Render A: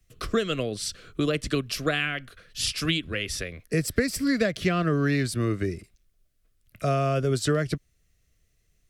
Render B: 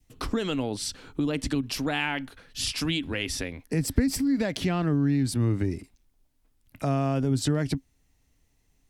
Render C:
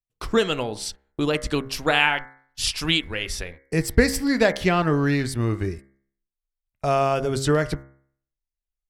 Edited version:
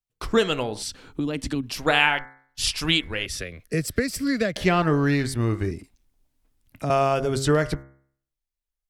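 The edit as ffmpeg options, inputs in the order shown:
-filter_complex "[1:a]asplit=2[s0][s1];[2:a]asplit=4[s2][s3][s4][s5];[s2]atrim=end=0.832[s6];[s0]atrim=start=0.828:end=1.782[s7];[s3]atrim=start=1.778:end=3.262[s8];[0:a]atrim=start=3.258:end=4.562[s9];[s4]atrim=start=4.558:end=5.712[s10];[s1]atrim=start=5.708:end=6.902[s11];[s5]atrim=start=6.898[s12];[s6][s7]acrossfade=d=0.004:c1=hsin:c2=hsin[s13];[s13][s8]acrossfade=d=0.004:c1=hsin:c2=hsin[s14];[s14][s9]acrossfade=d=0.004:c1=hsin:c2=hsin[s15];[s15][s10]acrossfade=d=0.004:c1=hsin:c2=hsin[s16];[s16][s11]acrossfade=d=0.004:c1=hsin:c2=hsin[s17];[s17][s12]acrossfade=d=0.004:c1=hsin:c2=hsin"

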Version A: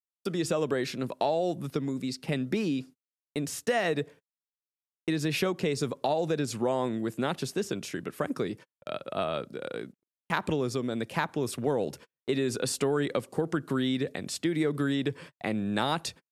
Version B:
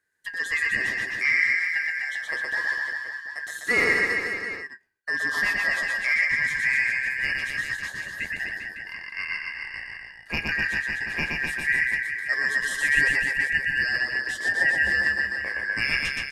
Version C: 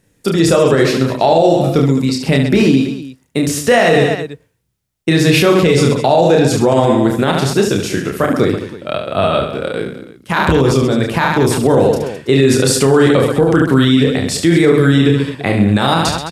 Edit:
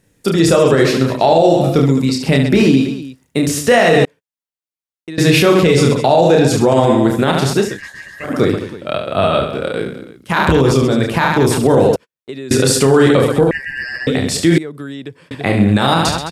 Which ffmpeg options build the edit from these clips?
-filter_complex "[0:a]asplit=3[s0][s1][s2];[1:a]asplit=2[s3][s4];[2:a]asplit=6[s5][s6][s7][s8][s9][s10];[s5]atrim=end=4.052[s11];[s0]atrim=start=4.048:end=5.182[s12];[s6]atrim=start=5.178:end=7.8[s13];[s3]atrim=start=7.56:end=8.43[s14];[s7]atrim=start=8.19:end=11.962[s15];[s1]atrim=start=11.958:end=12.512[s16];[s8]atrim=start=12.508:end=13.512[s17];[s4]atrim=start=13.508:end=14.072[s18];[s9]atrim=start=14.068:end=14.582[s19];[s2]atrim=start=14.578:end=15.312[s20];[s10]atrim=start=15.308[s21];[s11][s12]acrossfade=d=0.004:c1=hsin:c2=hsin[s22];[s22][s13]acrossfade=d=0.004:c1=hsin:c2=hsin[s23];[s23][s14]acrossfade=d=0.24:c1=tri:c2=tri[s24];[s24][s15]acrossfade=d=0.24:c1=tri:c2=tri[s25];[s25][s16]acrossfade=d=0.004:c1=hsin:c2=hsin[s26];[s26][s17]acrossfade=d=0.004:c1=hsin:c2=hsin[s27];[s27][s18]acrossfade=d=0.004:c1=hsin:c2=hsin[s28];[s28][s19]acrossfade=d=0.004:c1=hsin:c2=hsin[s29];[s29][s20]acrossfade=d=0.004:c1=hsin:c2=hsin[s30];[s30][s21]acrossfade=d=0.004:c1=hsin:c2=hsin"

